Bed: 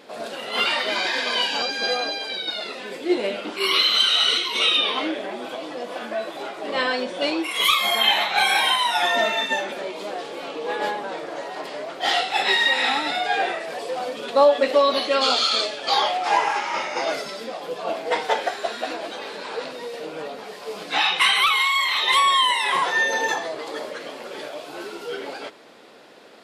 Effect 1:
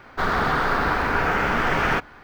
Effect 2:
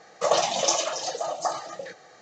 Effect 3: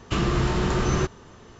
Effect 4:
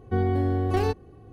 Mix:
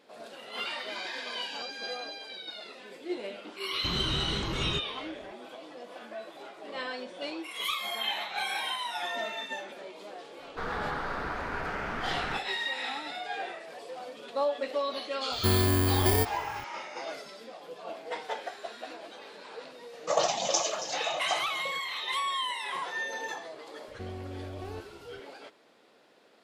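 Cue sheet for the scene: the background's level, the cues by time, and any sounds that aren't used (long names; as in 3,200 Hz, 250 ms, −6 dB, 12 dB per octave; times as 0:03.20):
bed −13.5 dB
0:03.73: mix in 3 −10.5 dB + pitch modulation by a square or saw wave square 5 Hz, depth 160 cents
0:10.39: mix in 1 −13 dB + low-pass filter 12,000 Hz
0:15.32: mix in 4 −1 dB + samples in bit-reversed order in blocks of 32 samples
0:19.86: mix in 2 −4.5 dB, fades 0.10 s
0:23.88: mix in 4 −9 dB + downward compressor 2 to 1, threshold −33 dBFS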